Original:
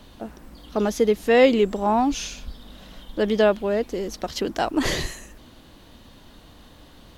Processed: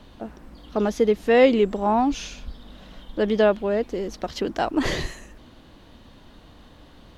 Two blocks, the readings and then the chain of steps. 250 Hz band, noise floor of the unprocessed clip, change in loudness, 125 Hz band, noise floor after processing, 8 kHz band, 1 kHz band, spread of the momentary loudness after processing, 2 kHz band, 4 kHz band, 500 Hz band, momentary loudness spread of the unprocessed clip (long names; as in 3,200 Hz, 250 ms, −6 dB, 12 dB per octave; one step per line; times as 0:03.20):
0.0 dB, −49 dBFS, 0.0 dB, 0.0 dB, −50 dBFS, −6.0 dB, 0.0 dB, 19 LU, −1.0 dB, −3.0 dB, 0.0 dB, 22 LU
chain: low-pass filter 3,600 Hz 6 dB per octave